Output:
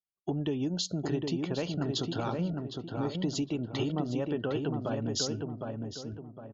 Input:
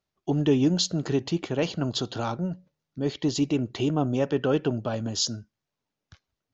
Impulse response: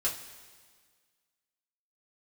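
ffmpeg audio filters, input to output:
-filter_complex "[0:a]afftdn=nr=24:nf=-46,acompressor=threshold=0.0355:ratio=6,asplit=2[s0][s1];[s1]adelay=759,lowpass=f=1800:p=1,volume=0.668,asplit=2[s2][s3];[s3]adelay=759,lowpass=f=1800:p=1,volume=0.39,asplit=2[s4][s5];[s5]adelay=759,lowpass=f=1800:p=1,volume=0.39,asplit=2[s6][s7];[s7]adelay=759,lowpass=f=1800:p=1,volume=0.39,asplit=2[s8][s9];[s9]adelay=759,lowpass=f=1800:p=1,volume=0.39[s10];[s2][s4][s6][s8][s10]amix=inputs=5:normalize=0[s11];[s0][s11]amix=inputs=2:normalize=0"

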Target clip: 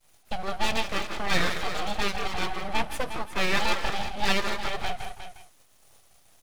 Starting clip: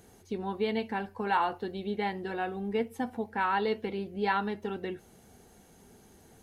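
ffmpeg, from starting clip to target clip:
-filter_complex "[0:a]agate=range=0.0224:threshold=0.00355:ratio=3:detection=peak,equalizer=f=380:w=0.74:g=6.5,asplit=2[s0][s1];[s1]adelay=160,highpass=300,lowpass=3400,asoftclip=type=hard:threshold=0.0794,volume=0.398[s2];[s0][s2]amix=inputs=2:normalize=0,crystalizer=i=7:c=0,highpass=240,equalizer=f=310:t=q:w=4:g=8,equalizer=f=590:t=q:w=4:g=-4,equalizer=f=2700:t=q:w=4:g=5,equalizer=f=7200:t=q:w=4:g=-9,lowpass=f=9700:w=0.5412,lowpass=f=9700:w=1.3066,asplit=2[s3][s4];[s4]aecho=0:1:165|358:0.178|0.299[s5];[s3][s5]amix=inputs=2:normalize=0,aeval=exprs='abs(val(0))':c=same"

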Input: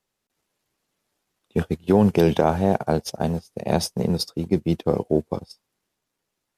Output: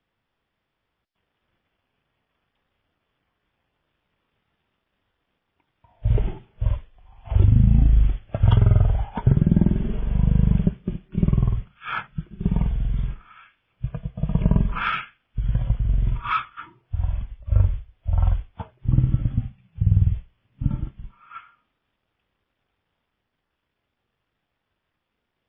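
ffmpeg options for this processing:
-filter_complex "[0:a]asplit=2[s0][s1];[s1]asoftclip=type=tanh:threshold=0.075,volume=0.282[s2];[s0][s2]amix=inputs=2:normalize=0,asetrate=11378,aresample=44100"

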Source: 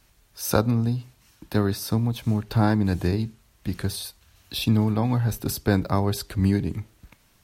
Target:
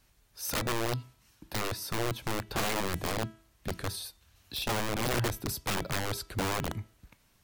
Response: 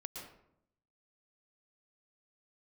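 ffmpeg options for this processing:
-af "aeval=exprs='(mod(8.41*val(0)+1,2)-1)/8.41':c=same,bandreject=f=327.4:t=h:w=4,bandreject=f=654.8:t=h:w=4,bandreject=f=982.2:t=h:w=4,bandreject=f=1309.6:t=h:w=4,bandreject=f=1637:t=h:w=4,bandreject=f=1964.4:t=h:w=4,bandreject=f=2291.8:t=h:w=4,bandreject=f=2619.2:t=h:w=4,bandreject=f=2946.6:t=h:w=4,bandreject=f=3274:t=h:w=4,bandreject=f=3601.4:t=h:w=4,volume=0.501"

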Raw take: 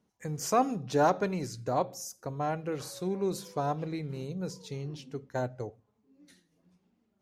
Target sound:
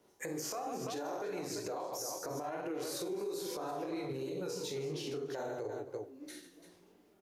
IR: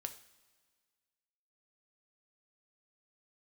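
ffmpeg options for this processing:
-filter_complex "[0:a]acrossover=split=110|1200|5500[s0][s1][s2][s3];[s0]acompressor=threshold=0.00112:ratio=4[s4];[s1]acompressor=threshold=0.0251:ratio=4[s5];[s2]acompressor=threshold=0.00708:ratio=4[s6];[s3]acompressor=threshold=0.00398:ratio=4[s7];[s4][s5][s6][s7]amix=inputs=4:normalize=0,lowshelf=f=260:t=q:w=3:g=-6.5,bandreject=f=60:t=h:w=6,bandreject=f=120:t=h:w=6,bandreject=f=180:t=h:w=6,bandreject=f=240:t=h:w=6,bandreject=f=300:t=h:w=6,bandreject=f=360:t=h:w=6,bandreject=f=420:t=h:w=6,asplit=2[s8][s9];[s9]adelay=268.2,volume=0.0501,highshelf=f=4000:g=-6.04[s10];[s8][s10]amix=inputs=2:normalize=0,flanger=delay=16.5:depth=6.4:speed=3,asplit=2[s11][s12];[s12]aecho=0:1:46|73|144|341:0.562|0.282|0.266|0.251[s13];[s11][s13]amix=inputs=2:normalize=0,acompressor=threshold=0.00794:ratio=6,asplit=2[s14][s15];[1:a]atrim=start_sample=2205[s16];[s15][s16]afir=irnorm=-1:irlink=0,volume=0.75[s17];[s14][s17]amix=inputs=2:normalize=0,alimiter=level_in=5.62:limit=0.0631:level=0:latency=1:release=95,volume=0.178,equalizer=f=12000:w=1.6:g=7,volume=2.51"

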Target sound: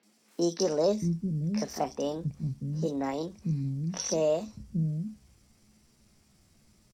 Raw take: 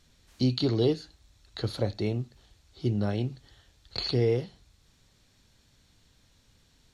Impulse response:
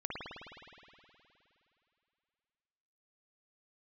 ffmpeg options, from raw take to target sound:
-filter_complex "[0:a]equalizer=f=160:t=o:w=0.21:g=14.5,asetrate=58866,aresample=44100,atempo=0.749154,acrossover=split=230|3500[s0][s1][s2];[s2]adelay=30[s3];[s0]adelay=630[s4];[s4][s1][s3]amix=inputs=3:normalize=0"

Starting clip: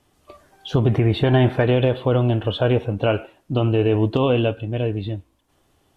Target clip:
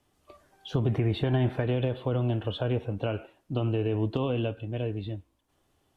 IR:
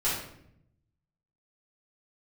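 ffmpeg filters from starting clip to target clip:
-filter_complex "[0:a]acrossover=split=290[s0][s1];[s1]acompressor=threshold=0.0891:ratio=4[s2];[s0][s2]amix=inputs=2:normalize=0,volume=0.398"

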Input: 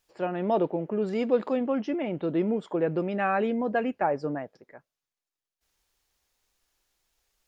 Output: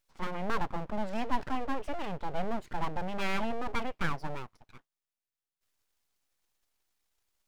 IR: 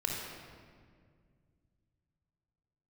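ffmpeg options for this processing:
-af "aeval=exprs='abs(val(0))':c=same,volume=0.708"

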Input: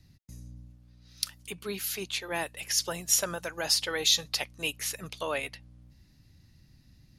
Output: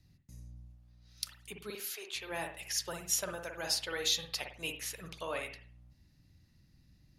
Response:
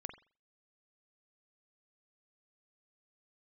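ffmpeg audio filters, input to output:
-filter_complex "[0:a]asettb=1/sr,asplit=3[s0][s1][s2];[s0]atrim=end=1.704[s3];[s1]atrim=start=1.7:end=2.15,asetpts=PTS-STARTPTS,afade=t=in:d=0.004:c=qsin,afade=t=out:st=0.446:d=0.004:c=qsin,highpass=f=420:w=0.5412,highpass=f=420:w=1.3066[s4];[s2]atrim=start=2.146[s5];[s3][s4]acrossfade=d=0.004:c1=hsin:c2=qsin[s6];[s6][s5]acrossfade=d=0.004:c1=qsin:c2=hsin[s7];[1:a]atrim=start_sample=2205,asetrate=39249,aresample=44100[s8];[s7][s8]afir=irnorm=-1:irlink=0,volume=0.708"

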